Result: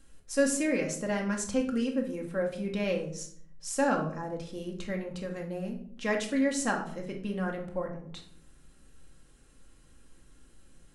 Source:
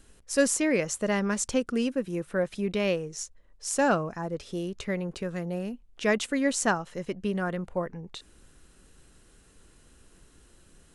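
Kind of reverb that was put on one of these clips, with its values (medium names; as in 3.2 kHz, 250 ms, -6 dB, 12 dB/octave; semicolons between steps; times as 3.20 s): simulated room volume 870 m³, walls furnished, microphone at 2.2 m; trim -6.5 dB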